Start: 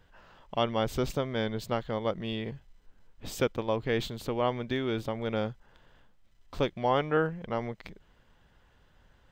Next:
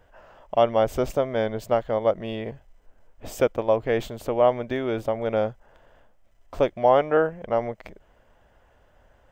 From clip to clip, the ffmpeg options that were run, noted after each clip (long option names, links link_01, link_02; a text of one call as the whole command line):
ffmpeg -i in.wav -af "equalizer=frequency=160:width_type=o:width=0.67:gain=-6,equalizer=frequency=630:width_type=o:width=0.67:gain=10,equalizer=frequency=4000:width_type=o:width=0.67:gain=-9,volume=3dB" out.wav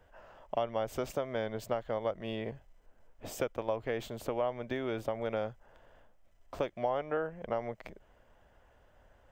ffmpeg -i in.wav -filter_complex "[0:a]acrossover=split=84|960[link_01][link_02][link_03];[link_01]acompressor=threshold=-49dB:ratio=4[link_04];[link_02]acompressor=threshold=-28dB:ratio=4[link_05];[link_03]acompressor=threshold=-35dB:ratio=4[link_06];[link_04][link_05][link_06]amix=inputs=3:normalize=0,volume=-4.5dB" out.wav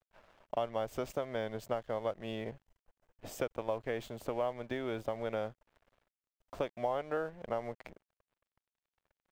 ffmpeg -i in.wav -af "aeval=exprs='sgn(val(0))*max(abs(val(0))-0.00168,0)':channel_layout=same,volume=-1.5dB" out.wav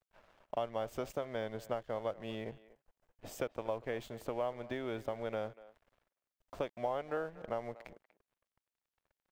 ffmpeg -i in.wav -filter_complex "[0:a]asplit=2[link_01][link_02];[link_02]adelay=240,highpass=300,lowpass=3400,asoftclip=type=hard:threshold=-27dB,volume=-18dB[link_03];[link_01][link_03]amix=inputs=2:normalize=0,volume=-2dB" out.wav